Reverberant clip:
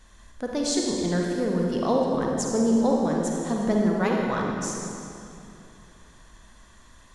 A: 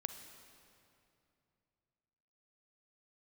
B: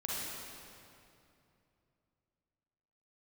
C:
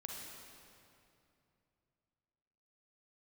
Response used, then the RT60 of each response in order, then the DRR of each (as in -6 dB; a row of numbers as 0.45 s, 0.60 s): C; 2.7 s, 2.7 s, 2.7 s; 8.0 dB, -6.5 dB, -1.0 dB